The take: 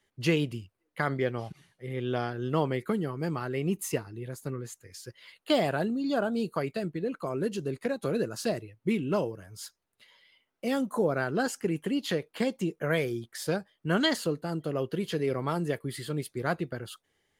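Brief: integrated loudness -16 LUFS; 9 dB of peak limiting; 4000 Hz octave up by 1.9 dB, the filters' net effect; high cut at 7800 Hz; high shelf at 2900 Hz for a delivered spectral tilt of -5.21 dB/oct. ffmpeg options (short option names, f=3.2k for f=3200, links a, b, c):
-af "lowpass=7.8k,highshelf=f=2.9k:g=-3.5,equalizer=f=4k:t=o:g=5.5,volume=17.5dB,alimiter=limit=-4dB:level=0:latency=1"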